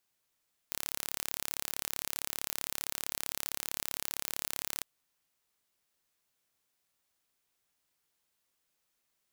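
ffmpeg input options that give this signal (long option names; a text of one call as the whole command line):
ffmpeg -f lavfi -i "aevalsrc='0.422*eq(mod(n,1246),0)':duration=4.12:sample_rate=44100" out.wav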